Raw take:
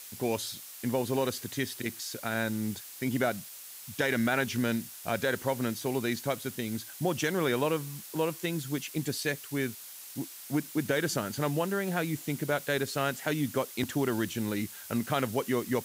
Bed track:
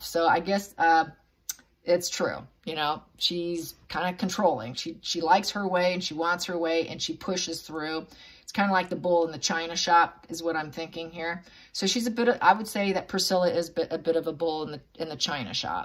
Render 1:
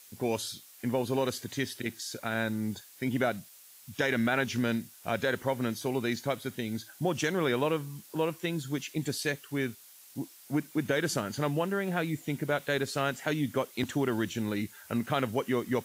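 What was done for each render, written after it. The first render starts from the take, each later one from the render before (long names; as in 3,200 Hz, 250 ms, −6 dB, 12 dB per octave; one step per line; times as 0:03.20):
noise reduction from a noise print 8 dB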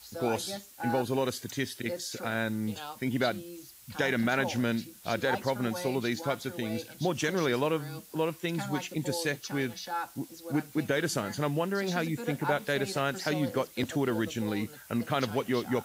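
mix in bed track −14 dB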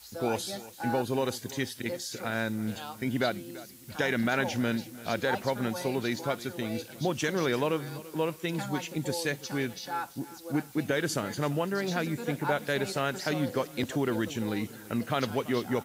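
repeating echo 337 ms, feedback 36%, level −18 dB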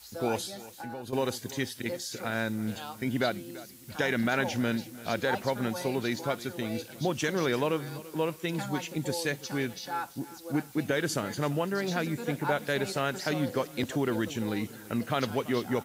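0:00.46–0:01.13: downward compressor 4 to 1, threshold −37 dBFS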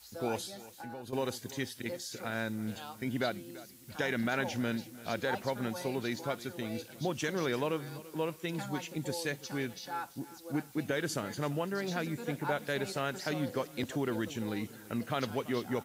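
level −4.5 dB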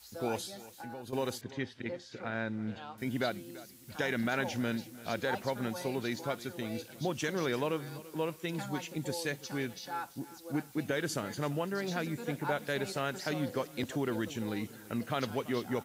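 0:01.41–0:02.98: low-pass filter 2,900 Hz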